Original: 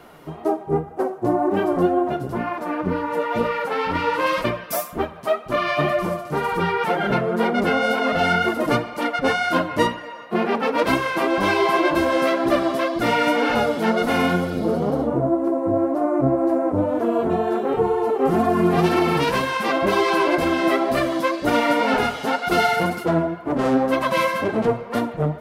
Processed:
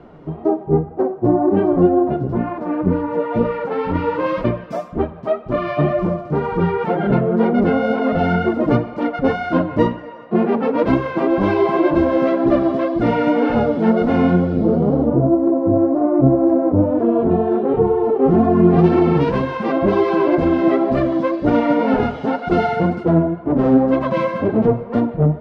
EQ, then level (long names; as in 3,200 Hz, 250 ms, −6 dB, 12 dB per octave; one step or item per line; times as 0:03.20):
high-frequency loss of the air 150 metres
tilt shelving filter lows +8 dB, about 750 Hz
+1.0 dB